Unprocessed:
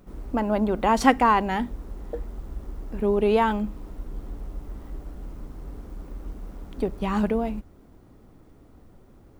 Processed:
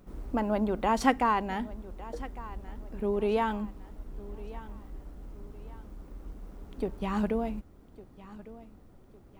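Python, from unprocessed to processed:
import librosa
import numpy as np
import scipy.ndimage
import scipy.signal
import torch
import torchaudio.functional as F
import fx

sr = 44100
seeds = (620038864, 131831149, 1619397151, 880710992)

y = fx.rider(x, sr, range_db=5, speed_s=2.0)
y = fx.echo_feedback(y, sr, ms=1156, feedback_pct=38, wet_db=-18)
y = y * 10.0 ** (-5.5 / 20.0)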